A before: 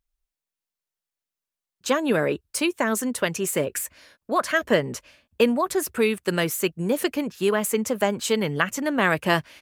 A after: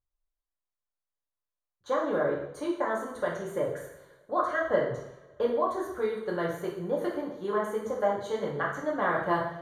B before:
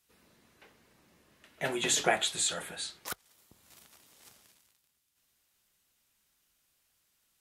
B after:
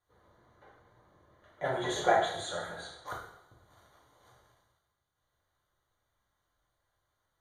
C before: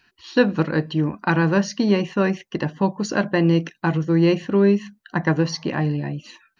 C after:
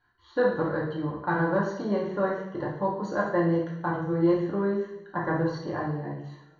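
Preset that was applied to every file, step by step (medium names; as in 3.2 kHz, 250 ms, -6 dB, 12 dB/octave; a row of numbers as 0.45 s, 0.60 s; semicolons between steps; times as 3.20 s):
boxcar filter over 17 samples; peaking EQ 240 Hz -14.5 dB 0.7 oct; two-slope reverb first 0.69 s, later 2.5 s, from -24 dB, DRR -4.5 dB; peak normalisation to -12 dBFS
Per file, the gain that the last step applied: -6.5 dB, +1.0 dB, -5.5 dB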